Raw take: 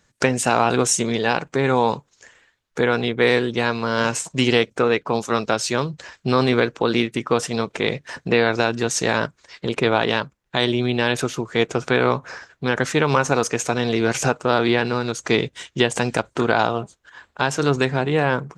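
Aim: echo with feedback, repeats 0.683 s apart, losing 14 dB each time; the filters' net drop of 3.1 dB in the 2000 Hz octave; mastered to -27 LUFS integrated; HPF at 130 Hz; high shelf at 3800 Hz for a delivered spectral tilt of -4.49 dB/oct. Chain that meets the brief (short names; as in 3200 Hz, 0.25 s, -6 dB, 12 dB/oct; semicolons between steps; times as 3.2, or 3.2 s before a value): HPF 130 Hz; bell 2000 Hz -3.5 dB; high shelf 3800 Hz -3 dB; feedback echo 0.683 s, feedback 20%, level -14 dB; gain -5 dB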